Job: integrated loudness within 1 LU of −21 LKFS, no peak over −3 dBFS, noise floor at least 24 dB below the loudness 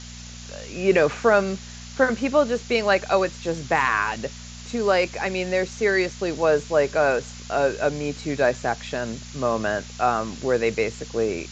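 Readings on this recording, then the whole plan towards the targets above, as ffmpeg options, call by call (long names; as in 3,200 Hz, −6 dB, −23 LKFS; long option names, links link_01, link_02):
mains hum 60 Hz; hum harmonics up to 240 Hz; level of the hum −38 dBFS; background noise floor −39 dBFS; target noise floor −47 dBFS; integrated loudness −23.0 LKFS; sample peak −5.5 dBFS; target loudness −21.0 LKFS
→ -af "bandreject=frequency=60:width_type=h:width=4,bandreject=frequency=120:width_type=h:width=4,bandreject=frequency=180:width_type=h:width=4,bandreject=frequency=240:width_type=h:width=4"
-af "afftdn=noise_reduction=8:noise_floor=-39"
-af "volume=2dB"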